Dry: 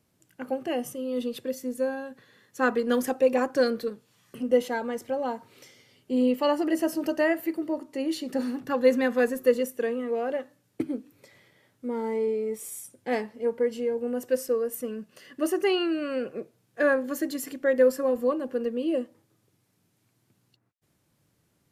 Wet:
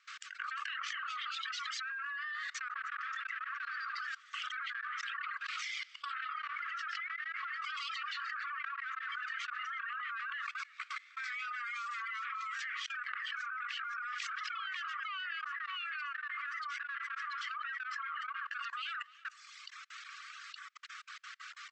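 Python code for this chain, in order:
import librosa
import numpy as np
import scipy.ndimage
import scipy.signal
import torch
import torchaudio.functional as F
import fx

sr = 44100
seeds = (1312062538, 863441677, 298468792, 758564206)

y = scipy.signal.medfilt(x, 5)
y = fx.echo_pitch(y, sr, ms=286, semitones=1, count=2, db_per_echo=-3.0)
y = 10.0 ** (-26.0 / 20.0) * np.tanh(y / 10.0 ** (-26.0 / 20.0))
y = fx.rotary(y, sr, hz=6.0)
y = fx.brickwall_bandpass(y, sr, low_hz=1100.0, high_hz=8200.0)
y = fx.env_lowpass_down(y, sr, base_hz=2100.0, full_db=-42.5)
y = fx.high_shelf(y, sr, hz=2100.0, db=-11.5)
y = y + 10.0 ** (-17.0 / 20.0) * np.pad(y, (int(306 * sr / 1000.0), 0))[:len(y)]
y = fx.level_steps(y, sr, step_db=23)
y = fx.dereverb_blind(y, sr, rt60_s=1.1)
y = fx.env_flatten(y, sr, amount_pct=100)
y = y * 10.0 ** (5.0 / 20.0)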